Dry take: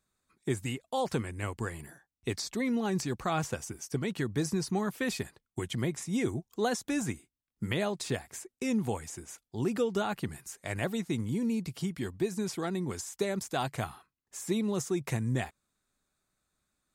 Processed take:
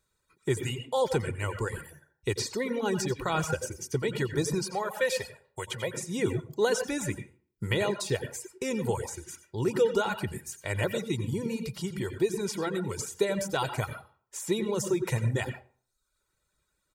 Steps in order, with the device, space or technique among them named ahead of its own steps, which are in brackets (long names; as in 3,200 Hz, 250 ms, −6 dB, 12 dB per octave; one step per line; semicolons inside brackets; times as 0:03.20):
microphone above a desk (comb filter 2.1 ms, depth 56%; convolution reverb RT60 0.50 s, pre-delay 81 ms, DRR 4.5 dB)
reverb reduction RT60 0.7 s
0:04.64–0:05.94: low shelf with overshoot 430 Hz −8.5 dB, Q 3
level +2.5 dB